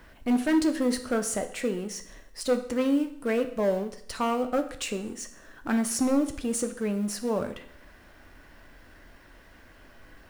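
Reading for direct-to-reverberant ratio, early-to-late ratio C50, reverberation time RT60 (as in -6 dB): 7.5 dB, 12.0 dB, 0.65 s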